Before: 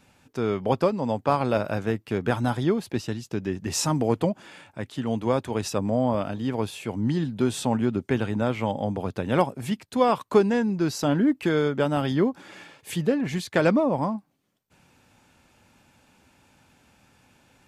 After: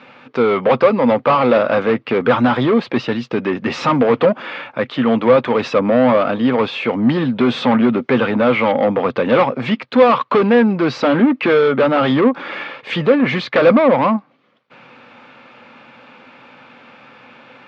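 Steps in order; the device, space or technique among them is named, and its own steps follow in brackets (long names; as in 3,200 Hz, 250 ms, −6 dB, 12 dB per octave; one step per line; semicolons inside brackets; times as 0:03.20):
overdrive pedal into a guitar cabinet (mid-hump overdrive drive 26 dB, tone 4,600 Hz, clips at −6.5 dBFS; loudspeaker in its box 110–3,900 Hz, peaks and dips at 130 Hz +8 dB, 240 Hz +9 dB, 510 Hz +9 dB, 1,200 Hz +8 dB, 2,200 Hz +4 dB)
level −2.5 dB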